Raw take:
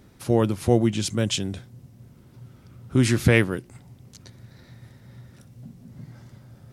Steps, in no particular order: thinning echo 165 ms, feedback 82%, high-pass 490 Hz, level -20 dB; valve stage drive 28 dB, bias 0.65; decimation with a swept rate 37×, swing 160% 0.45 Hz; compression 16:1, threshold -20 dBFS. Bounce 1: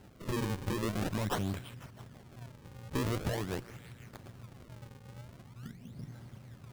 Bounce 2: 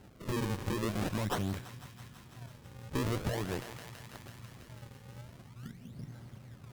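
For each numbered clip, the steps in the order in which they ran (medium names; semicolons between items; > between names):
compression > thinning echo > valve stage > decimation with a swept rate; decimation with a swept rate > thinning echo > compression > valve stage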